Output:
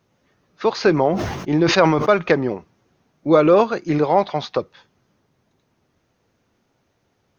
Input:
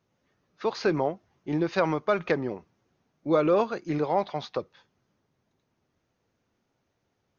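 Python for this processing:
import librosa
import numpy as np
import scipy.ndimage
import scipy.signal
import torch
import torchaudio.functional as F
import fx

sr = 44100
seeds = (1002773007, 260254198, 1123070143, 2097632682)

y = fx.sustainer(x, sr, db_per_s=44.0, at=(1.07, 2.1))
y = F.gain(torch.from_numpy(y), 9.0).numpy()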